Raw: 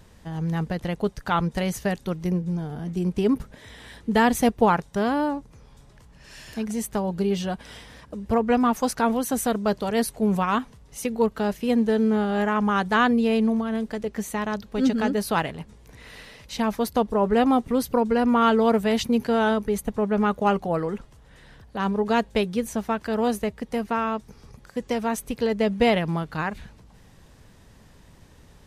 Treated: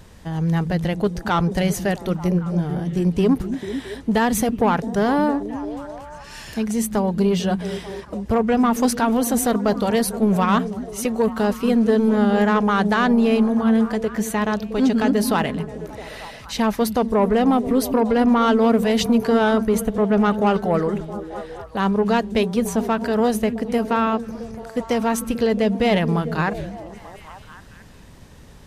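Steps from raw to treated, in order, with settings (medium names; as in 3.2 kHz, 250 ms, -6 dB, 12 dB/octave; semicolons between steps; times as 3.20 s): peak limiter -14 dBFS, peak gain reduction 6 dB; saturation -16 dBFS, distortion -20 dB; repeats whose band climbs or falls 222 ms, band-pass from 190 Hz, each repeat 0.7 oct, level -6 dB; trim +6 dB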